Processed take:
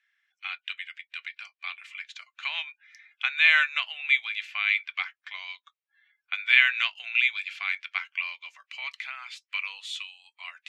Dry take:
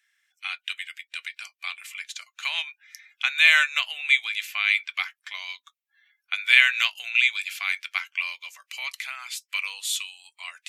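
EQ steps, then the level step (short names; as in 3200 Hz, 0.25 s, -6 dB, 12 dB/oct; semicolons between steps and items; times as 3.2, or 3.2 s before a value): BPF 570–3200 Hz; -1.5 dB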